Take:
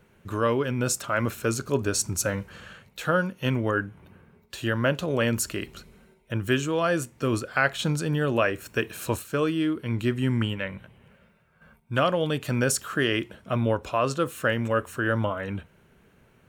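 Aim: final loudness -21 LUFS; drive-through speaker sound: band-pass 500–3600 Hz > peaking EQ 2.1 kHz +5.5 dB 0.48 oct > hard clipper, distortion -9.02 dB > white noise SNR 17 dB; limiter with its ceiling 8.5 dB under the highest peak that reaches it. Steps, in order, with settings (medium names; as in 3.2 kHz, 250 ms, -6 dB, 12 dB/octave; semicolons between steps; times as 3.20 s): peak limiter -16.5 dBFS; band-pass 500–3600 Hz; peaking EQ 2.1 kHz +5.5 dB 0.48 oct; hard clipper -28 dBFS; white noise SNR 17 dB; trim +14 dB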